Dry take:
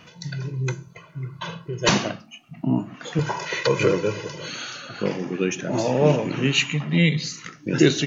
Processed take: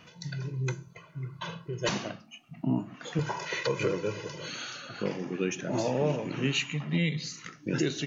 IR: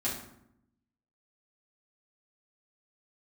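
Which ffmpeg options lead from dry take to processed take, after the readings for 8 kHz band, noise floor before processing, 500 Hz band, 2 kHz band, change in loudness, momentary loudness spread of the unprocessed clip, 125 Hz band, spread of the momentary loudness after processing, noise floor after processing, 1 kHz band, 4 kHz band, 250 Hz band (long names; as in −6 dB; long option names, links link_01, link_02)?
can't be measured, −50 dBFS, −8.5 dB, −8.5 dB, −8.5 dB, 14 LU, −8.0 dB, 11 LU, −56 dBFS, −8.0 dB, −9.0 dB, −8.5 dB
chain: -af "alimiter=limit=-12dB:level=0:latency=1:release=458,volume=-5.5dB"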